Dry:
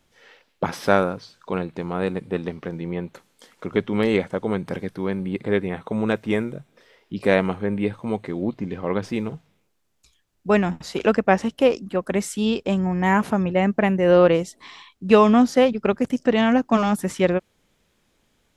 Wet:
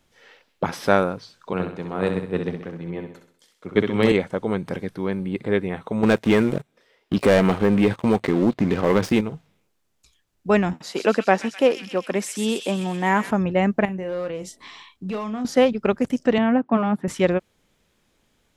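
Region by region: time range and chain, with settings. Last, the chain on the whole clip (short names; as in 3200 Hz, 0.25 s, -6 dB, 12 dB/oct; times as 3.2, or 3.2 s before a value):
1.53–4.12 feedback echo 65 ms, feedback 55%, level -6.5 dB + three-band expander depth 70%
6.03–9.21 low shelf 62 Hz -9 dB + sample leveller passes 3 + compressor 2:1, threshold -16 dBFS
10.73–13.31 HPF 210 Hz + thin delay 0.128 s, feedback 63%, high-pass 2800 Hz, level -4 dB
13.85–15.45 hard clip -9 dBFS + compressor 4:1, threshold -29 dBFS + doubler 32 ms -9.5 dB
16.38–17.08 HPF 99 Hz 24 dB/oct + air absorption 500 m
whole clip: dry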